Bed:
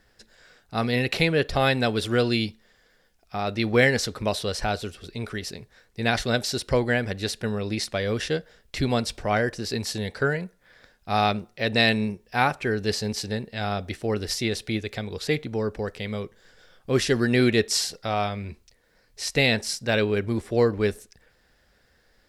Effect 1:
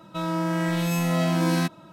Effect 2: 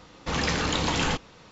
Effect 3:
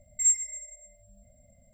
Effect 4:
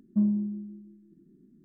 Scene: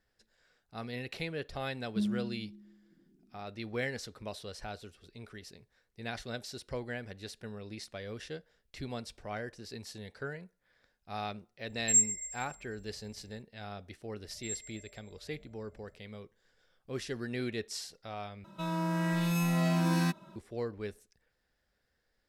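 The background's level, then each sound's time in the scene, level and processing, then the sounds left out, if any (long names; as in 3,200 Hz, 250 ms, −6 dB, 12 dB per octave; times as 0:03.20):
bed −16 dB
0:01.80: mix in 4 −7.5 dB
0:11.69: mix in 3 −1.5 dB + flat-topped bell 790 Hz −8.5 dB
0:14.24: mix in 3 −3.5 dB + low-pass filter 1,400 Hz 6 dB per octave
0:18.44: overwrite with 1 −7.5 dB + comb filter 5.1 ms, depth 52%
not used: 2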